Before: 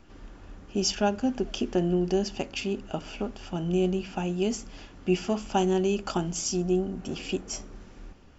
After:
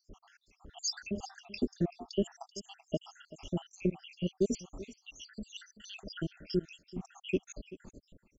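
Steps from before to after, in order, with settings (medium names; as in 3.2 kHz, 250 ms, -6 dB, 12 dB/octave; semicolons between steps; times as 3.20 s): random holes in the spectrogram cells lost 82%; delay 384 ms -17 dB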